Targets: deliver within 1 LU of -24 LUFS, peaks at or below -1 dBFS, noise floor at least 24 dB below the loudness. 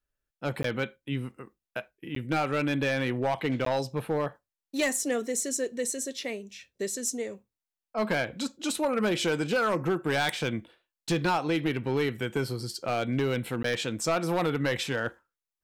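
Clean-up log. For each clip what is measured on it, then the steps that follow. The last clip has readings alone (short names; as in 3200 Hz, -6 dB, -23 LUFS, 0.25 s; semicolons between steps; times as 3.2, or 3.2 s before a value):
clipped 1.1%; flat tops at -20.5 dBFS; dropouts 4; longest dropout 13 ms; loudness -29.5 LUFS; peak -20.5 dBFS; loudness target -24.0 LUFS
-> clip repair -20.5 dBFS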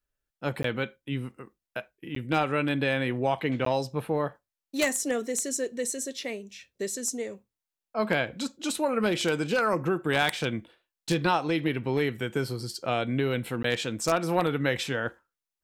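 clipped 0.0%; dropouts 4; longest dropout 13 ms
-> interpolate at 0.63/2.15/3.65/13.63, 13 ms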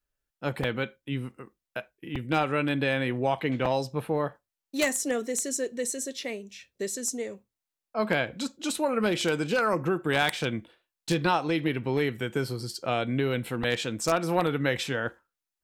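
dropouts 0; loudness -28.5 LUFS; peak -11.5 dBFS; loudness target -24.0 LUFS
-> gain +4.5 dB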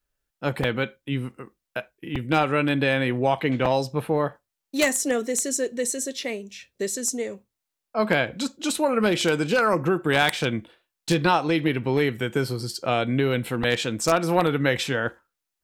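loudness -24.0 LUFS; peak -7.0 dBFS; noise floor -84 dBFS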